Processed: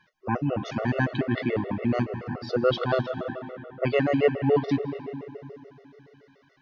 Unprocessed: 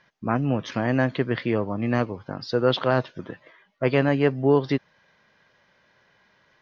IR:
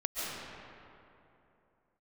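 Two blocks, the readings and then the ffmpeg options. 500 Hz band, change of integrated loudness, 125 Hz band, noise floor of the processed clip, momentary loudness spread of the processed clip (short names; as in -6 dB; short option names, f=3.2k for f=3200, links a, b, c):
-1.5 dB, -3.0 dB, -3.0 dB, -62 dBFS, 15 LU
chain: -filter_complex "[0:a]asplit=2[a][b];[1:a]atrim=start_sample=2205,lowpass=3.5k,adelay=25[c];[b][c]afir=irnorm=-1:irlink=0,volume=-13dB[d];[a][d]amix=inputs=2:normalize=0,afftfilt=real='re*gt(sin(2*PI*7*pts/sr)*(1-2*mod(floor(b*sr/1024/370),2)),0)':imag='im*gt(sin(2*PI*7*pts/sr)*(1-2*mod(floor(b*sr/1024/370),2)),0)':win_size=1024:overlap=0.75"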